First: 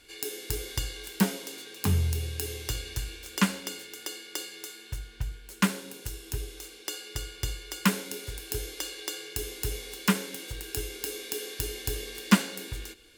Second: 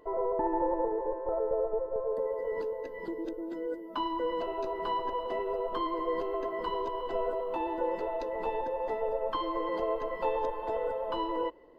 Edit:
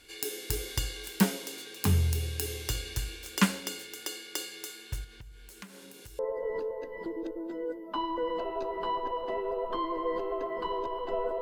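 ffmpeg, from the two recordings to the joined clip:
ffmpeg -i cue0.wav -i cue1.wav -filter_complex "[0:a]asettb=1/sr,asplit=3[link_01][link_02][link_03];[link_01]atrim=end=5.044[link_04];[link_02]atrim=start=5.04:end=6.19,asetpts=PTS-STARTPTS,afade=type=in:duration=0.004:curve=qsin,afade=type=out:start_time=1.146:duration=0.004:curve=qsin,acompressor=threshold=-46dB:ratio=5:attack=3.2:release=140:knee=1:detection=peak[link_05];[link_03]atrim=start=6.186[link_06];[link_04][link_05]acrossfade=duration=0.004:curve1=hsin:curve2=qsin[link_07];[link_07][link_06]acrossfade=duration=0.004:curve1=qsin:curve2=hsin,apad=whole_dur=11.41,atrim=end=11.41,atrim=end=6.192[link_08];[1:a]atrim=start=2.208:end=7.43[link_09];[link_08][link_09]acrossfade=duration=0.004:curve1=hsin:curve2=hsin" out.wav

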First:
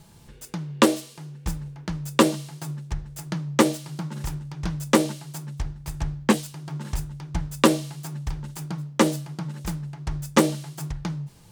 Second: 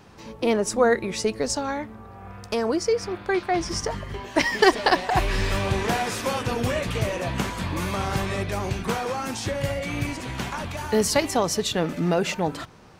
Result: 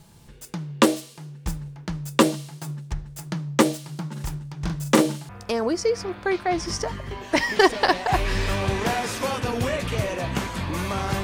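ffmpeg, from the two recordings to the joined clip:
ffmpeg -i cue0.wav -i cue1.wav -filter_complex "[0:a]asettb=1/sr,asplit=3[link_01][link_02][link_03];[link_01]atrim=end=4.574[link_04];[link_02]atrim=start=4.57:end=5.29,asetpts=PTS-STARTPTS,afade=type=in:duration=0.004:curve=qsin,afade=type=out:start_time=0.716:duration=0.004:curve=qsin,asplit=2[link_05][link_06];[link_06]adelay=42,volume=-5.5dB[link_07];[link_05][link_07]amix=inputs=2:normalize=0,atrim=end_sample=31752[link_08];[link_03]atrim=start=5.286[link_09];[link_04][link_08]acrossfade=duration=0.004:curve1=hsin:curve2=qsin[link_10];[link_10][link_09]acrossfade=duration=0.004:curve1=qsin:curve2=hsin,apad=whole_dur=11.23,atrim=end=11.23,atrim=end=5.292[link_11];[1:a]atrim=start=2.318:end=8.26[link_12];[link_11][link_12]acrossfade=duration=0.004:curve1=hsin:curve2=hsin" out.wav

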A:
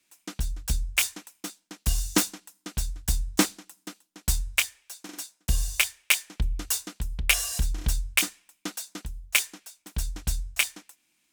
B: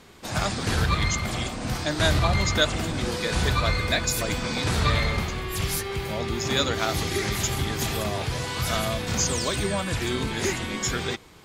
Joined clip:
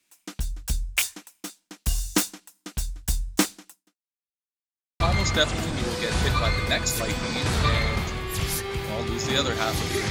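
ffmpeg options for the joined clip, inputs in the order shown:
ffmpeg -i cue0.wav -i cue1.wav -filter_complex "[0:a]apad=whole_dur=10.1,atrim=end=10.1,asplit=2[link_01][link_02];[link_01]atrim=end=4.34,asetpts=PTS-STARTPTS,afade=type=out:start_time=3.72:duration=0.62:curve=exp[link_03];[link_02]atrim=start=4.34:end=5,asetpts=PTS-STARTPTS,volume=0[link_04];[1:a]atrim=start=2.21:end=7.31,asetpts=PTS-STARTPTS,afade=type=in:duration=0.004:curve=hsin[link_05];[link_03][link_04][link_05]concat=n=3:v=0:a=1" out.wav

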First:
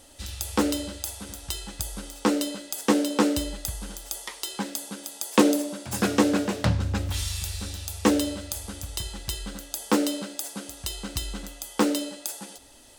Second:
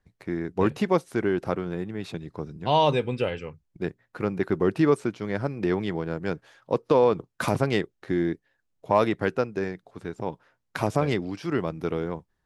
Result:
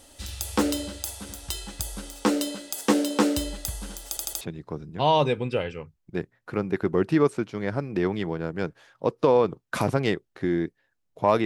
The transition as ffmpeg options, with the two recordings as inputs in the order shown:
ffmpeg -i cue0.wav -i cue1.wav -filter_complex "[0:a]apad=whole_dur=11.45,atrim=end=11.45,asplit=4[link_01][link_02][link_03][link_04];[link_01]atrim=end=4.172[link_05];[link_02]atrim=start=4.088:end=4.172[link_06];[link_03]atrim=start=4.088:end=4.172[link_07];[link_04]atrim=start=4.088:end=4.172[link_08];[1:a]atrim=start=2.078:end=9.12[link_09];[link_05][link_06]acrossfade=duration=0.004:curve1=hsin:curve2=hsin[link_10];[link_10][link_07]acrossfade=duration=0.004:curve1=hsin:curve2=hsin[link_11];[link_11][link_08]acrossfade=duration=0.004:curve1=hsin:curve2=hsin[link_12];[link_12][link_09]acrossfade=duration=0.004:curve1=hsin:curve2=hsin" out.wav

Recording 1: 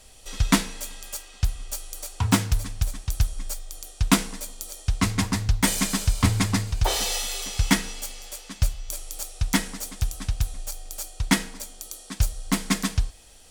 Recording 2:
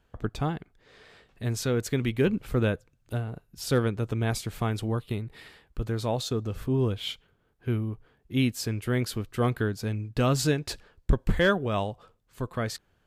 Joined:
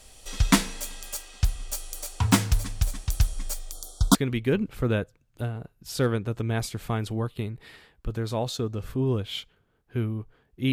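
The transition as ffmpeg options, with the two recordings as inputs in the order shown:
ffmpeg -i cue0.wav -i cue1.wav -filter_complex "[0:a]asettb=1/sr,asplit=3[link_01][link_02][link_03];[link_01]atrim=end=3.724[link_04];[link_02]atrim=start=3.72:end=4.15,asetpts=PTS-STARTPTS,afade=type=in:duration=0.004:curve=qsin,afade=type=out:start_time=0.426:duration=0.004:curve=qsin,asuperstop=centerf=2200:order=20:qfactor=1.3[link_05];[link_03]atrim=start=4.146[link_06];[link_04][link_05]acrossfade=duration=0.004:curve1=hsin:curve2=qsin[link_07];[link_07][link_06]acrossfade=duration=0.004:curve1=qsin:curve2=hsin,apad=whole_dur=10.72,atrim=end=10.72,atrim=end=4.152[link_08];[1:a]atrim=start=1.868:end=8.44[link_09];[link_08][link_09]acrossfade=duration=0.004:curve1=hsin:curve2=hsin" out.wav

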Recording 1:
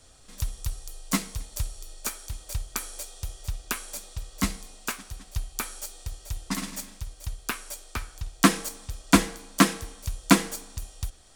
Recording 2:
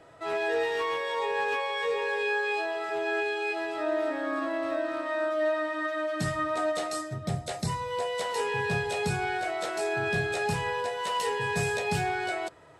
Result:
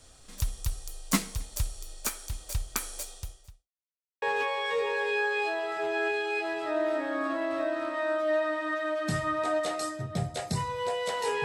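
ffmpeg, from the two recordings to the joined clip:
ffmpeg -i cue0.wav -i cue1.wav -filter_complex "[0:a]apad=whole_dur=11.44,atrim=end=11.44,asplit=2[link_01][link_02];[link_01]atrim=end=3.69,asetpts=PTS-STARTPTS,afade=type=out:start_time=3.11:duration=0.58:curve=qua[link_03];[link_02]atrim=start=3.69:end=4.22,asetpts=PTS-STARTPTS,volume=0[link_04];[1:a]atrim=start=1.34:end=8.56,asetpts=PTS-STARTPTS,afade=type=in:duration=0.004:curve=hsin[link_05];[link_03][link_04][link_05]concat=n=3:v=0:a=1" out.wav

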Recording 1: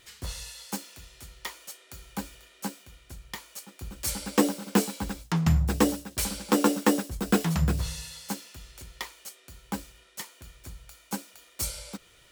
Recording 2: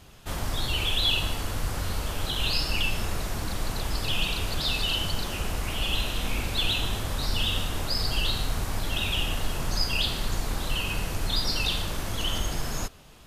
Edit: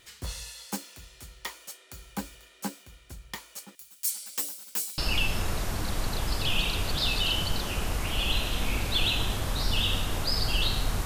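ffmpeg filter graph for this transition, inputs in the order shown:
ffmpeg -i cue0.wav -i cue1.wav -filter_complex "[0:a]asettb=1/sr,asplit=3[link_01][link_02][link_03];[link_01]atrim=end=3.754[link_04];[link_02]atrim=start=3.75:end=4.98,asetpts=PTS-STARTPTS,afade=type=in:duration=0.004:curve=qsin,afade=type=out:start_time=1.226:duration=0.004:curve=qsin,aderivative[link_05];[link_03]atrim=start=4.976[link_06];[link_04][link_05]acrossfade=duration=0.004:curve1=hsin:curve2=qsin[link_07];[link_07][link_06]acrossfade=duration=0.004:curve1=qsin:curve2=hsin,apad=whole_dur=11.05,atrim=end=11.05,atrim=end=4.982[link_08];[1:a]atrim=start=2.608:end=8.68[link_09];[link_08][link_09]acrossfade=duration=0.004:curve1=hsin:curve2=hsin" out.wav

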